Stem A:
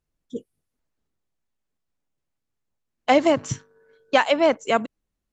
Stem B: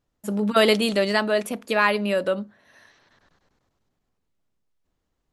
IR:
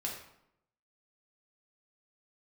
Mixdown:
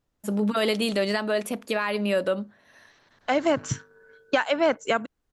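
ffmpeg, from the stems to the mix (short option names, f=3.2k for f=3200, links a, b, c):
-filter_complex "[0:a]equalizer=f=1.5k:w=4.1:g=8.5,adelay=200,volume=2dB[a];[1:a]alimiter=limit=-14.5dB:level=0:latency=1:release=136,volume=-0.5dB,asplit=2[b][c];[c]apad=whole_len=243818[d];[a][d]sidechaincompress=threshold=-47dB:ratio=3:attack=16:release=871[e];[e][b]amix=inputs=2:normalize=0,alimiter=limit=-10.5dB:level=0:latency=1:release=497"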